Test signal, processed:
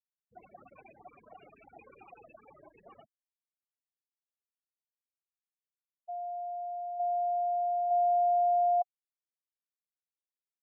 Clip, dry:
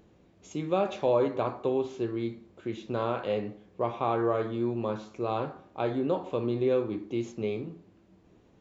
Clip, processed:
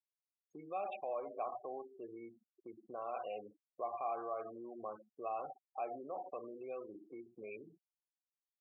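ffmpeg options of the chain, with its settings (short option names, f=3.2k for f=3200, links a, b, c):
-filter_complex "[0:a]adynamicequalizer=threshold=0.00447:dfrequency=2300:dqfactor=1.1:tfrequency=2300:tqfactor=1.1:attack=5:release=100:ratio=0.375:range=3:mode=boostabove:tftype=bell,bandreject=f=60:t=h:w=6,bandreject=f=120:t=h:w=6,bandreject=f=180:t=h:w=6,afftfilt=real='re*gte(hypot(re,im),0.0316)':imag='im*gte(hypot(re,im),0.0316)':win_size=1024:overlap=0.75,asplit=2[a][b];[b]acompressor=threshold=-39dB:ratio=6,volume=2dB[c];[a][c]amix=inputs=2:normalize=0,alimiter=limit=-22dB:level=0:latency=1:release=56,asplit=3[d][e][f];[d]bandpass=f=730:t=q:w=8,volume=0dB[g];[e]bandpass=f=1.09k:t=q:w=8,volume=-6dB[h];[f]bandpass=f=2.44k:t=q:w=8,volume=-9dB[i];[g][h][i]amix=inputs=3:normalize=0"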